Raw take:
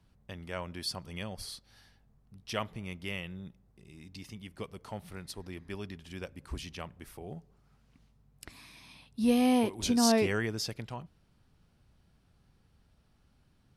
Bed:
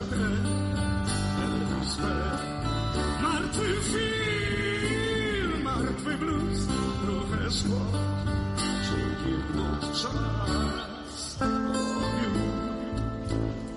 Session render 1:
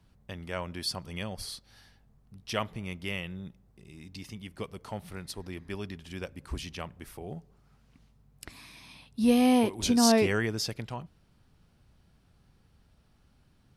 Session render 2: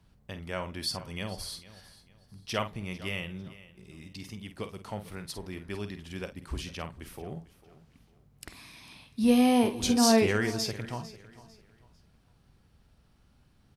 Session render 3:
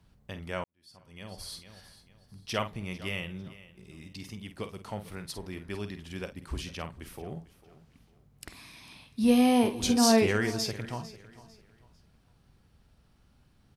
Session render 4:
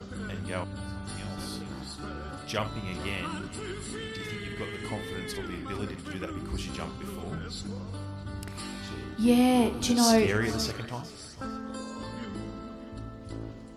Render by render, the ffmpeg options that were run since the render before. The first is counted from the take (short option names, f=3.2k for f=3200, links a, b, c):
-af "volume=3dB"
-filter_complex "[0:a]asplit=2[a][b];[b]adelay=49,volume=-10dB[c];[a][c]amix=inputs=2:normalize=0,aecho=1:1:449|898|1347:0.126|0.039|0.0121"
-filter_complex "[0:a]asplit=2[a][b];[a]atrim=end=0.64,asetpts=PTS-STARTPTS,afade=t=out:st=0.636:d=0.004:c=hsin[c];[b]atrim=start=0.64,asetpts=PTS-STARTPTS,afade=t=in:d=0.97:c=qua[d];[c][d]concat=n=2:v=0:a=1"
-filter_complex "[1:a]volume=-10dB[a];[0:a][a]amix=inputs=2:normalize=0"